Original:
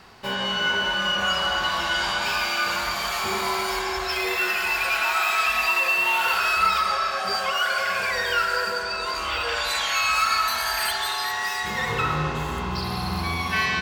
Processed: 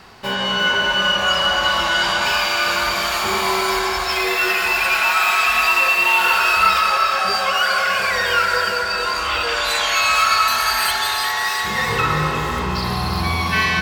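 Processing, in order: two-band feedback delay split 1.5 kHz, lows 228 ms, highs 352 ms, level -7.5 dB; trim +5 dB

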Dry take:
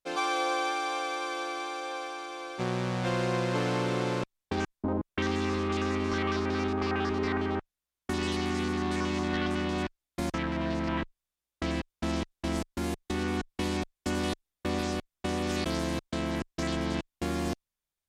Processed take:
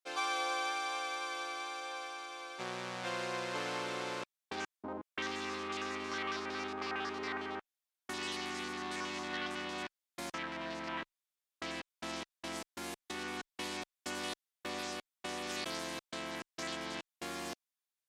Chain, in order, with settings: high-pass 970 Hz 6 dB/octave; trim -3 dB

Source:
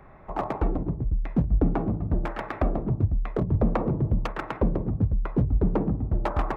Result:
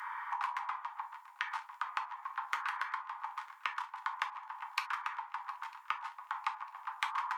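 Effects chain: steep high-pass 1 kHz 96 dB/octave; in parallel at -11.5 dB: saturation -34 dBFS, distortion -8 dB; on the sum: compression 12:1, threshold -48 dBFS, peak gain reduction 20.5 dB; on a send: shuffle delay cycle 846 ms, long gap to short 3:1, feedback 50%, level -21.5 dB; on the sum: tape speed -11%; gated-style reverb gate 90 ms falling, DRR 5.5 dB; trim +14 dB

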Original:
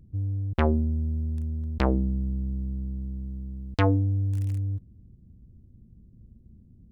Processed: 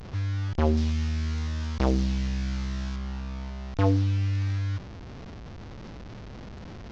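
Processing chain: one-bit delta coder 32 kbps, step -35 dBFS; 0.77–2.96 s: treble shelf 4.3 kHz +10.5 dB

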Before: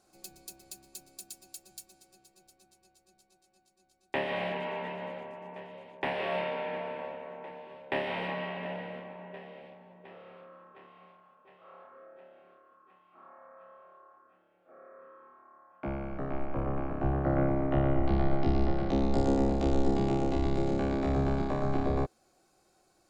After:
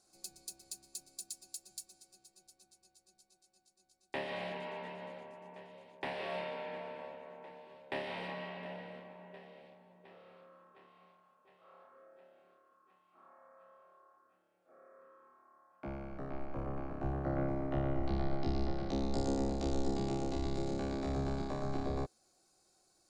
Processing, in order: high-order bell 6.5 kHz +9 dB; trim -7.5 dB

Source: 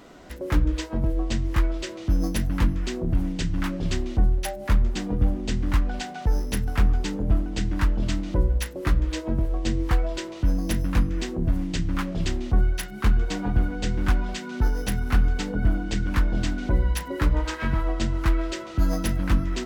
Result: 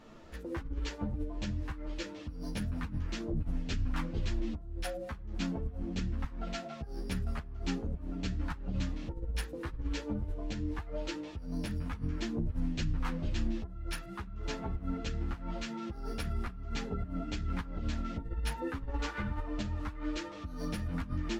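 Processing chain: compressor with a negative ratio -25 dBFS, ratio -1; bass shelf 75 Hz +6 dB; speed mistake 48 kHz file played as 44.1 kHz; treble shelf 10 kHz -10 dB; three-phase chorus; trim -6.5 dB

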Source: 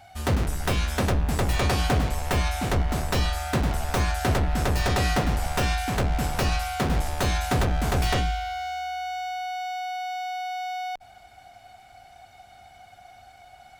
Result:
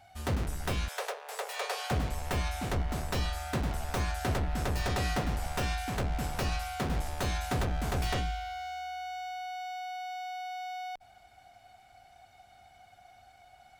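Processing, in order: 0.88–1.91 s: steep high-pass 420 Hz 96 dB/octave; trim -7.5 dB

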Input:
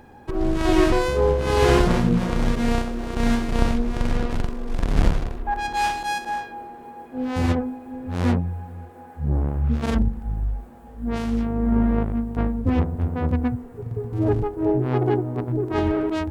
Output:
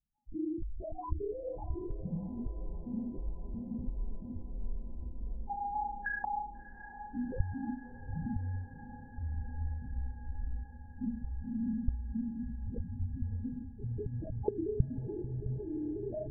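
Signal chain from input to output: drifting ripple filter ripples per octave 0.6, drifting +1.5 Hz, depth 12 dB; gate -31 dBFS, range -28 dB; compression 6:1, threshold -28 dBFS, peak gain reduction 16 dB; loudest bins only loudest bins 1; LPC vocoder at 8 kHz whisper; on a send: echo that smears into a reverb 662 ms, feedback 76%, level -14 dB

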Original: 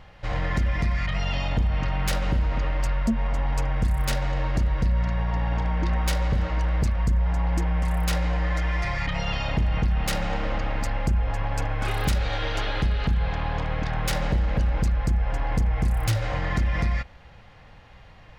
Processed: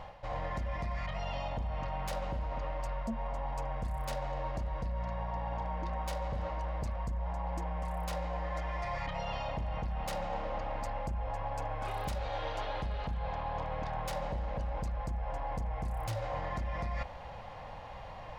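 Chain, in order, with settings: high-order bell 750 Hz +10 dB 1.3 oct; reverse; compression 5:1, threshold -35 dBFS, peak gain reduction 15.5 dB; reverse

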